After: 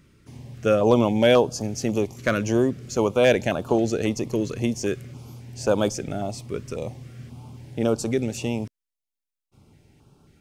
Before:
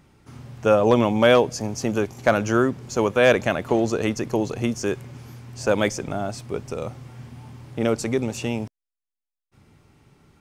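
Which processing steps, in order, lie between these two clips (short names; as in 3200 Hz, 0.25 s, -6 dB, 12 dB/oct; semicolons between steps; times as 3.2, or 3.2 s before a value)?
stepped notch 3.7 Hz 800–2000 Hz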